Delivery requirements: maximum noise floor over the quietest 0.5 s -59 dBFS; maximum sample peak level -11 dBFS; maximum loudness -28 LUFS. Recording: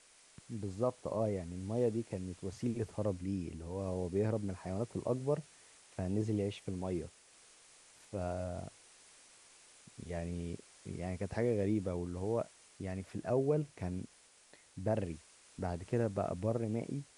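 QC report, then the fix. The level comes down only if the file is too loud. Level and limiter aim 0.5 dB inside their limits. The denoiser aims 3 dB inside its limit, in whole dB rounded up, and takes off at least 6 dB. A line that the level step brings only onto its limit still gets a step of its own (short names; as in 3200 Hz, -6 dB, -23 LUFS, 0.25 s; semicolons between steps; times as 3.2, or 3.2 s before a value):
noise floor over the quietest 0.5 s -63 dBFS: OK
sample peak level -20.0 dBFS: OK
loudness -38.0 LUFS: OK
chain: none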